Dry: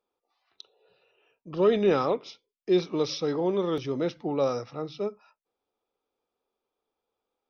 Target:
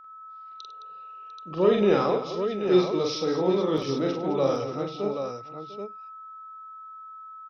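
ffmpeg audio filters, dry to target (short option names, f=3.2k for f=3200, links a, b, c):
-af "aeval=exprs='val(0)+0.00501*sin(2*PI*1300*n/s)':c=same,aecho=1:1:44|100|214|698|781:0.668|0.237|0.266|0.15|0.473"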